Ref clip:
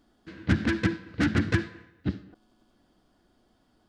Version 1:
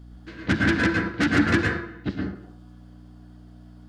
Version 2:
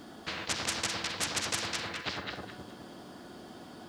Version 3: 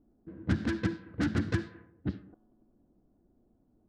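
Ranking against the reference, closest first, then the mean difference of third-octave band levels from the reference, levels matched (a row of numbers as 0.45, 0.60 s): 3, 1, 2; 2.0, 6.0, 16.5 dB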